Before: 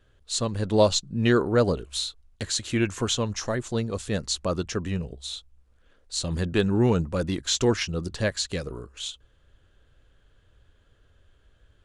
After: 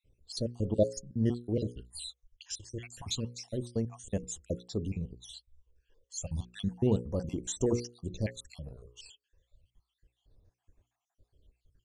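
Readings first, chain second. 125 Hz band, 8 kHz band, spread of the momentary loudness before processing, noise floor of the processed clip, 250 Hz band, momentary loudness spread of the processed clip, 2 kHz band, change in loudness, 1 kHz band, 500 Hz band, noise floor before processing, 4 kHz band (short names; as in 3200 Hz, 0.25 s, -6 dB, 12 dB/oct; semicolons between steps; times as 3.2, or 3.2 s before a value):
-7.0 dB, -10.0 dB, 13 LU, under -85 dBFS, -8.0 dB, 17 LU, -20.5 dB, -8.5 dB, -18.5 dB, -9.0 dB, -62 dBFS, -14.5 dB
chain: random spectral dropouts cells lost 58%; bell 1400 Hz -15 dB 0.81 oct; notches 60/120/180/240/300/360/420/480/540 Hz; phaser stages 12, 0.3 Hz, lowest notch 210–4300 Hz; gain -3.5 dB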